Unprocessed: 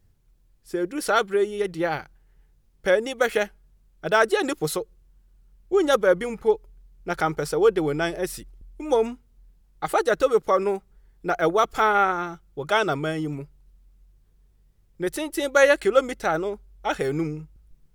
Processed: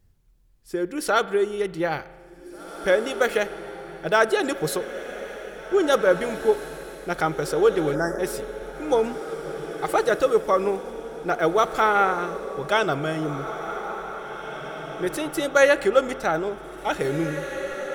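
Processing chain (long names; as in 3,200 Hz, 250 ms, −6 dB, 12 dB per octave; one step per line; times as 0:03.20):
feedback delay with all-pass diffusion 1,952 ms, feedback 44%, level −10.5 dB
time-frequency box erased 0:07.95–0:08.19, 2,000–4,800 Hz
spring reverb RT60 1.6 s, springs 36 ms, chirp 20 ms, DRR 16 dB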